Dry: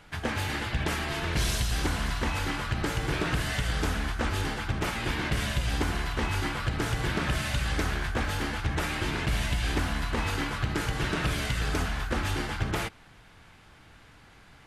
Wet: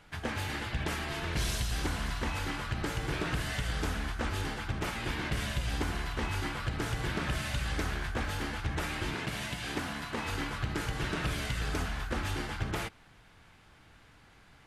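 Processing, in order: 9.14–10.28 s: high-pass 130 Hz 12 dB/octave; trim -4.5 dB

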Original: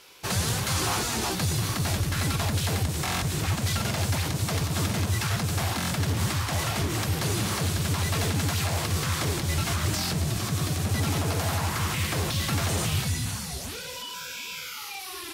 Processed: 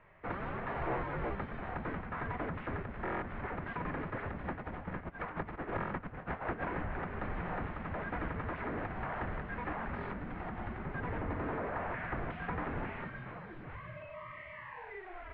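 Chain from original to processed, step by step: 4.44–6.65 s: compressor with a negative ratio -29 dBFS, ratio -0.5; mistuned SSB -380 Hz 230–2300 Hz; trim -4.5 dB

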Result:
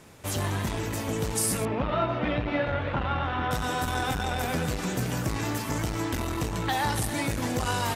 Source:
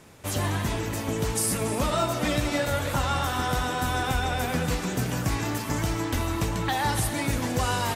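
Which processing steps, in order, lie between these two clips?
1.65–3.51 s: low-pass 3 kHz 24 dB/octave; transformer saturation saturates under 310 Hz

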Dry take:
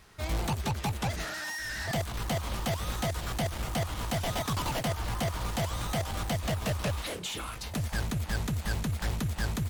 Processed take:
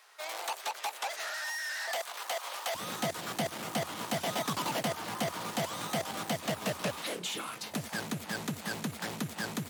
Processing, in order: high-pass 580 Hz 24 dB/octave, from 2.75 s 170 Hz

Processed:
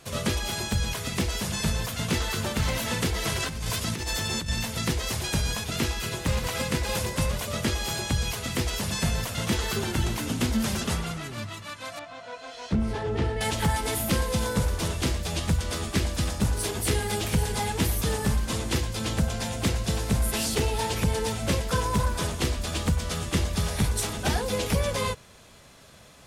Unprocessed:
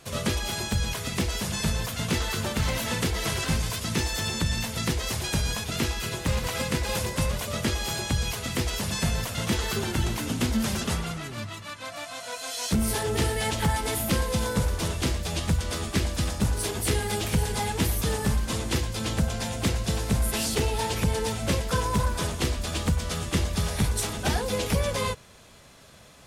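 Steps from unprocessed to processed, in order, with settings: 3.36–4.50 s: compressor with a negative ratio -30 dBFS, ratio -1; 11.99–13.41 s: tape spacing loss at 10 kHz 26 dB

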